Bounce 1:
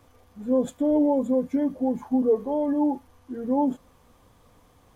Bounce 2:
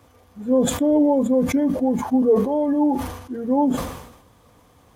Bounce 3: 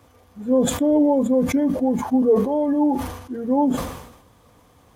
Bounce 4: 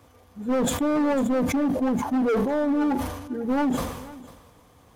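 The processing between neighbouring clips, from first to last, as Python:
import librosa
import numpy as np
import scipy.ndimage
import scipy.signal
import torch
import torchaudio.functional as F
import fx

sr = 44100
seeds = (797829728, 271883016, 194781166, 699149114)

y1 = scipy.signal.sosfilt(scipy.signal.butter(2, 49.0, 'highpass', fs=sr, output='sos'), x)
y1 = fx.sustainer(y1, sr, db_per_s=65.0)
y1 = F.gain(torch.from_numpy(y1), 4.0).numpy()
y2 = y1
y3 = np.clip(y2, -10.0 ** (-19.0 / 20.0), 10.0 ** (-19.0 / 20.0))
y3 = y3 + 10.0 ** (-19.0 / 20.0) * np.pad(y3, (int(498 * sr / 1000.0), 0))[:len(y3)]
y3 = F.gain(torch.from_numpy(y3), -1.0).numpy()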